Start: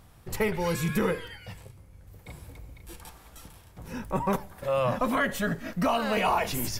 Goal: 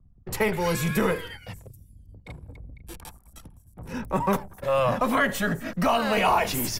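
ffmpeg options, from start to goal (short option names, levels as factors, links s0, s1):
-filter_complex "[0:a]anlmdn=0.0251,acrossover=split=130|3000[s0][s1][s2];[s0]acompressor=threshold=0.0158:ratio=10[s3];[s3][s1][s2]amix=inputs=3:normalize=0,acrossover=split=120|650|6800[s4][s5][s6][s7];[s4]tremolo=f=180:d=0.333[s8];[s5]aeval=exprs='clip(val(0),-1,0.0282)':c=same[s9];[s7]aecho=1:1:206|237|783:0.158|0.168|0.126[s10];[s8][s9][s6][s10]amix=inputs=4:normalize=0,volume=1.58"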